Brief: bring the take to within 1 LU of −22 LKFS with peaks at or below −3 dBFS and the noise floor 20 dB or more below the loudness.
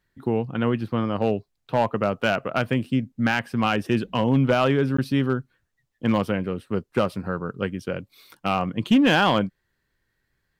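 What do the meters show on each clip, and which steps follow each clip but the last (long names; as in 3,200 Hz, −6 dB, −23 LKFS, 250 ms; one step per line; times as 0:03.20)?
share of clipped samples 0.4%; peaks flattened at −11.5 dBFS; number of dropouts 1; longest dropout 14 ms; integrated loudness −24.0 LKFS; sample peak −11.5 dBFS; target loudness −22.0 LKFS
→ clipped peaks rebuilt −11.5 dBFS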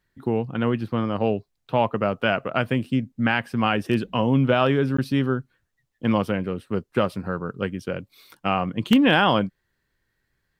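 share of clipped samples 0.0%; number of dropouts 1; longest dropout 14 ms
→ repair the gap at 0:04.97, 14 ms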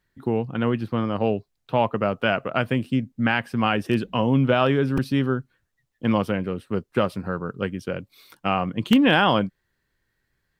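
number of dropouts 0; integrated loudness −23.5 LKFS; sample peak −2.5 dBFS; target loudness −22.0 LKFS
→ level +1.5 dB
brickwall limiter −3 dBFS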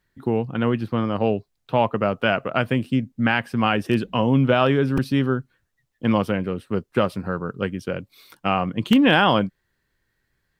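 integrated loudness −22.0 LKFS; sample peak −3.0 dBFS; background noise floor −73 dBFS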